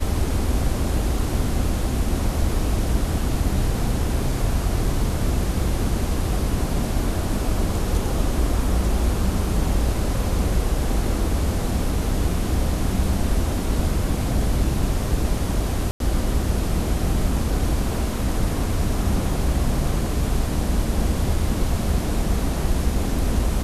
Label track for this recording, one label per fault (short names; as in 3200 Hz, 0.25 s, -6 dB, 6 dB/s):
15.910000	16.000000	gap 92 ms